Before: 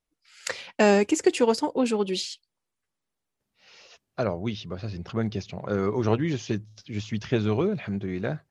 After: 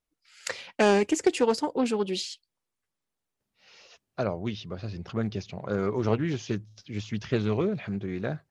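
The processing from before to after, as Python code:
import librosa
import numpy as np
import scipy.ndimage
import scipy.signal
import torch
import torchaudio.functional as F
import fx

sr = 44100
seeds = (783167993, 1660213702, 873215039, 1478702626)

y = fx.doppler_dist(x, sr, depth_ms=0.2)
y = y * librosa.db_to_amplitude(-2.0)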